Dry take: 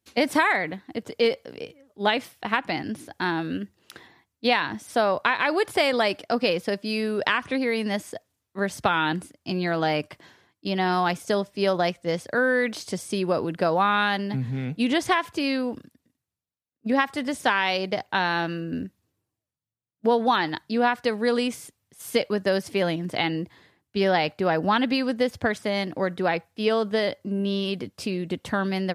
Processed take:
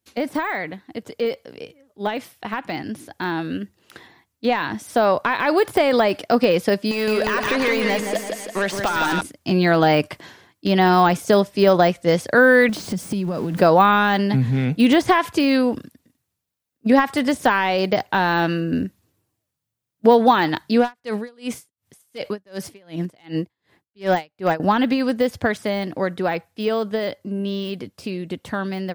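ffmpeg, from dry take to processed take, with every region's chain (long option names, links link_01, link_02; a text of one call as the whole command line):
ffmpeg -i in.wav -filter_complex "[0:a]asettb=1/sr,asplit=3[link_01][link_02][link_03];[link_01]atrim=end=6.914[link_04];[link_02]atrim=start=6.91:end=9.21,asetpts=PTS-STARTPTS,afade=type=in:duration=0.004:curve=qsin,afade=type=out:start_time=2.296:duration=0.004:curve=qsin,acompressor=threshold=-34dB:ratio=6:attack=3.2:release=140:knee=1:detection=peak,asplit=2[link_05][link_06];[link_06]highpass=frequency=720:poles=1,volume=21dB,asoftclip=type=tanh:threshold=-18dB[link_07];[link_05][link_07]amix=inputs=2:normalize=0,lowpass=frequency=6100:poles=1,volume=-6dB,aecho=1:1:166|332|498|664|830|996:0.562|0.264|0.124|0.0584|0.0274|0.0129,atrim=end_sample=101430[link_08];[link_03]atrim=start=9.206[link_09];[link_04][link_08]acrossfade=duration=0.004:curve1=hsin:curve2=qsin[link_10];[link_10][link_09]acrossfade=duration=0.004:curve1=qsin:curve2=hsin,asettb=1/sr,asplit=3[link_11][link_12][link_13];[link_11]atrim=end=12.694[link_14];[link_12]atrim=start=12.69:end=13.61,asetpts=PTS-STARTPTS,afade=type=in:duration=0.004:curve=qsin,afade=type=out:start_time=0.916:duration=0.004:curve=qsin,aeval=exprs='val(0)+0.5*0.015*sgn(val(0))':channel_layout=same,equalizer=frequency=190:width_type=o:width=0.77:gain=12,acompressor=threshold=-29dB:ratio=16:attack=3.2:release=140:knee=1:detection=peak[link_15];[link_13]atrim=start=13.606[link_16];[link_14][link_15]acrossfade=duration=0.004:curve1=hsin:curve2=qsin[link_17];[link_17][link_16]acrossfade=duration=0.004:curve1=qsin:curve2=hsin,asettb=1/sr,asplit=3[link_18][link_19][link_20];[link_18]atrim=end=20.794[link_21];[link_19]atrim=start=20.79:end=24.6,asetpts=PTS-STARTPTS,afade=type=in:duration=0.004:curve=qsin,afade=type=out:start_time=3.806:duration=0.004:curve=qsin,asoftclip=type=hard:threshold=-14.5dB,aeval=exprs='val(0)*pow(10,-38*(0.5-0.5*cos(2*PI*2.7*n/s))/20)':channel_layout=same[link_22];[link_20]atrim=start=24.596[link_23];[link_21][link_22]acrossfade=duration=0.004:curve1=hsin:curve2=qsin[link_24];[link_24][link_23]acrossfade=duration=0.004:curve1=qsin:curve2=hsin,deesser=0.95,highshelf=frequency=11000:gain=4.5,dynaudnorm=framelen=770:gausssize=13:maxgain=11.5dB" out.wav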